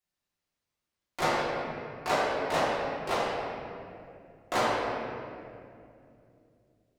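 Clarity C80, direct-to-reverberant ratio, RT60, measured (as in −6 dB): −0.5 dB, −10.0 dB, 2.5 s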